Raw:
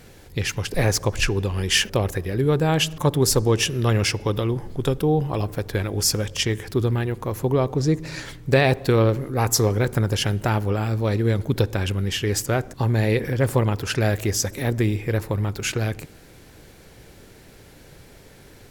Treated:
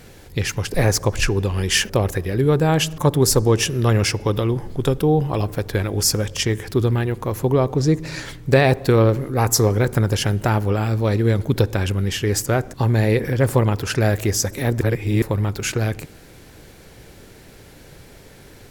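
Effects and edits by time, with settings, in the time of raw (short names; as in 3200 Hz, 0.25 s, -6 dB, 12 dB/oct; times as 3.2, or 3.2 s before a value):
14.81–15.22 reverse
whole clip: dynamic EQ 3100 Hz, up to -4 dB, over -36 dBFS, Q 1.3; gain +3 dB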